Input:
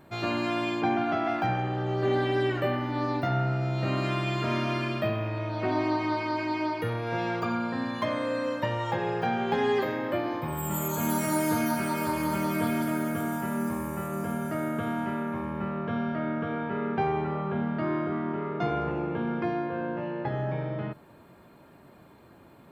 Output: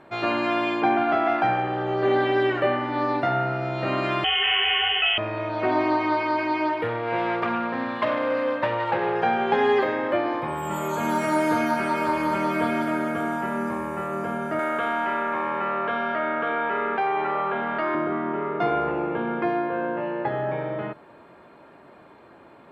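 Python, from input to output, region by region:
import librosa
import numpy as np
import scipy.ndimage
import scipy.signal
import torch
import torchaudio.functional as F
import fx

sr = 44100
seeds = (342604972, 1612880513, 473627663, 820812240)

y = fx.chain(x, sr, fx.freq_invert(carrier_hz=3200),
    fx.env_flatten(amount_pct=50), at=(4.24, 5.18))
y = fx.chain(y, sr, fx.self_delay(depth_ms=0.22),
    fx.peak_eq(hz=6400.0, db=-12.5, octaves=0.85), at=(6.69, 9.16))
y = fx.chain(y, sr, fx.highpass(hz=890.0, slope=6),
    fx.env_flatten(amount_pct=70), at=(14.59, 17.95))
y = scipy.signal.sosfilt(scipy.signal.butter(2, 9700.0, 'lowpass', fs=sr, output='sos'), y)
y = fx.bass_treble(y, sr, bass_db=-12, treble_db=-12)
y = F.gain(torch.from_numpy(y), 7.0).numpy()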